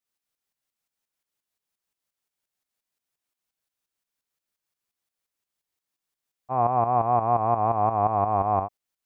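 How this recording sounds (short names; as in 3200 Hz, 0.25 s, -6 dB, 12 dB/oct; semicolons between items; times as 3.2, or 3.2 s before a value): tremolo saw up 5.7 Hz, depth 65%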